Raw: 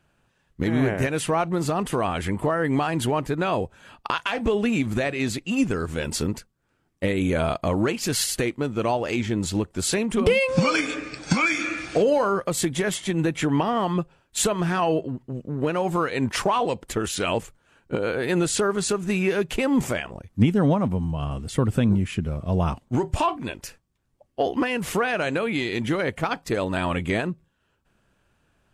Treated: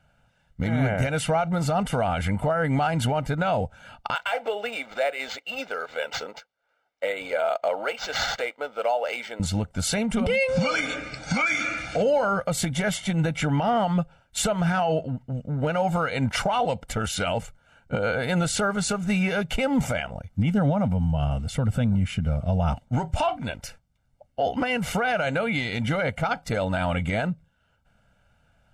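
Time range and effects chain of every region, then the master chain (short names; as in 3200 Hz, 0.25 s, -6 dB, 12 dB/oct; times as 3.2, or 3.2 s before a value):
4.15–9.4 Chebyshev high-pass 450 Hz, order 3 + decimation joined by straight lines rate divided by 4×
whole clip: high shelf 6700 Hz -7.5 dB; comb 1.4 ms, depth 82%; limiter -15 dBFS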